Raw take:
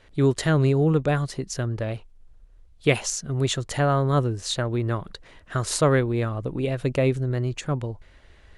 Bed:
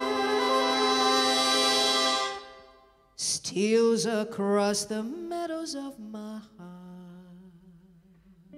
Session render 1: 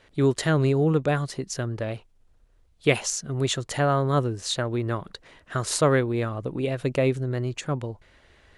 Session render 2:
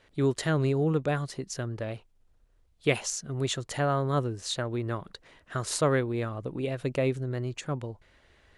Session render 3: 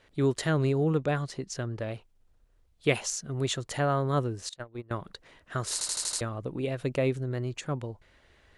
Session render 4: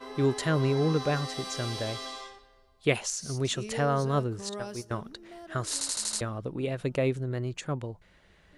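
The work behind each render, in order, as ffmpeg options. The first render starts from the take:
-af "lowshelf=f=72:g=-11.5"
-af "volume=-4.5dB"
-filter_complex "[0:a]asettb=1/sr,asplit=3[a][b][c];[a]atrim=end=0.984[d];[b]atrim=start=0.98:end=1.79,asetpts=PTS-STARTPTS,afade=t=in:d=0.004:c=qsin,afade=t=out:st=0.806:d=0.004:c=qsin,lowpass=8.7k[e];[c]atrim=start=1.786[f];[d][e]acrossfade=d=0.004:c1=hsin:c2=qsin[g];[g][f]acrossfade=d=0.004:c1=qsin:c2=hsin,asettb=1/sr,asplit=3[h][i][j];[h]atrim=end=4.494[k];[i]atrim=start=4.49:end=4.91,asetpts=PTS-STARTPTS,afade=t=in:d=0.004:c=qsin,afade=t=out:st=0.416:d=0.004:c=qsin,agate=range=-24dB:threshold=-29dB:ratio=16:release=100:detection=peak[l];[j]atrim=start=4.906[m];[k][l]acrossfade=d=0.004:c1=hsin:c2=qsin[n];[n][m]acrossfade=d=0.004:c1=qsin:c2=hsin,asplit=7[o][p][q][r][s][t][u];[o]atrim=end=5.812[v];[p]atrim=start=5.728:end=5.812[w];[q]atrim=start=5.728:end=5.812[x];[r]atrim=start=5.728:end=5.812[y];[s]atrim=start=5.728:end=5.812[z];[t]atrim=start=5.728:end=5.812[aa];[u]atrim=start=6.208[ab];[v][w]acrossfade=d=0.004:c1=hsin:c2=hsin[ac];[ac][x]acrossfade=d=0.004:c1=hsin:c2=hsin[ad];[ad][y]acrossfade=d=0.004:c1=hsin:c2=hsin[ae];[ae][z]acrossfade=d=0.004:c1=hsin:c2=hsin[af];[af][aa]acrossfade=d=0.004:c1=hsin:c2=hsin[ag];[ag][ab]acrossfade=d=0.004:c1=hsin:c2=hsin"
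-filter_complex "[1:a]volume=-14dB[a];[0:a][a]amix=inputs=2:normalize=0"

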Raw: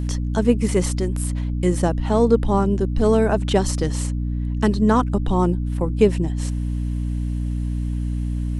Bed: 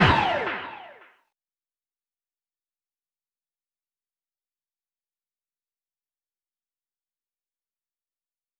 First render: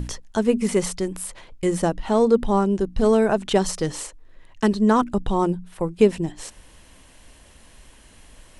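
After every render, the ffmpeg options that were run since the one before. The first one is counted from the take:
-af "bandreject=f=60:t=h:w=6,bandreject=f=120:t=h:w=6,bandreject=f=180:t=h:w=6,bandreject=f=240:t=h:w=6,bandreject=f=300:t=h:w=6"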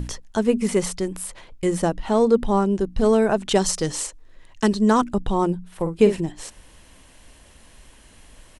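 -filter_complex "[0:a]asettb=1/sr,asplit=3[a][b][c];[a]atrim=end=3.494[d];[b]atrim=start=3.49:end=5.09,asetpts=PTS-STARTPTS,afade=t=in:d=0.004:c=qsin,afade=t=out:st=1.596:d=0.004:c=qsin,equalizer=f=6.8k:w=0.69:g=6[e];[c]atrim=start=5.086[f];[d][e]acrossfade=d=0.004:c1=hsin:c2=qsin[g];[g][f]acrossfade=d=0.004:c1=qsin:c2=hsin,asplit=3[h][i][j];[h]afade=t=out:st=5.71:d=0.02[k];[i]asplit=2[l][m];[m]adelay=49,volume=-9dB[n];[l][n]amix=inputs=2:normalize=0,afade=t=in:st=5.71:d=0.02,afade=t=out:st=6.19:d=0.02[o];[j]afade=t=in:st=6.19:d=0.02[p];[k][o][p]amix=inputs=3:normalize=0"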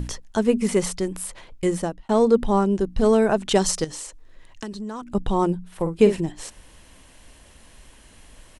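-filter_complex "[0:a]asettb=1/sr,asplit=3[a][b][c];[a]atrim=end=3.844[d];[b]atrim=start=3.84:end=5.15,asetpts=PTS-STARTPTS,afade=t=in:d=0.004:c=qsin,afade=t=out:st=1.306:d=0.004:c=qsin,acompressor=threshold=-32dB:ratio=4:attack=3.2:release=140:knee=1:detection=peak[e];[c]atrim=start=5.146[f];[d][e]acrossfade=d=0.004:c1=hsin:c2=qsin[g];[g][f]acrossfade=d=0.004:c1=qsin:c2=hsin,asplit=2[h][i];[h]atrim=end=2.09,asetpts=PTS-STARTPTS,afade=t=out:st=1.67:d=0.42[j];[i]atrim=start=2.09,asetpts=PTS-STARTPTS,afade=t=in:d=0.004:c=hsin[k];[j][k]concat=n=2:v=0:a=1"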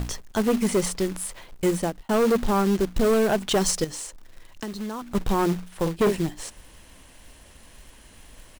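-af "acrusher=bits=3:mode=log:mix=0:aa=0.000001,asoftclip=type=hard:threshold=-16.5dB"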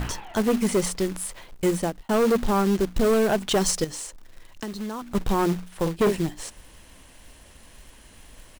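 -filter_complex "[1:a]volume=-20dB[a];[0:a][a]amix=inputs=2:normalize=0"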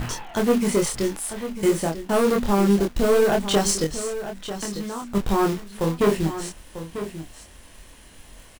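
-filter_complex "[0:a]asplit=2[a][b];[b]adelay=25,volume=-3dB[c];[a][c]amix=inputs=2:normalize=0,asplit=2[d][e];[e]aecho=0:1:944:0.266[f];[d][f]amix=inputs=2:normalize=0"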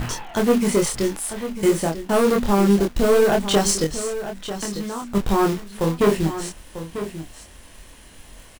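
-af "volume=2dB"

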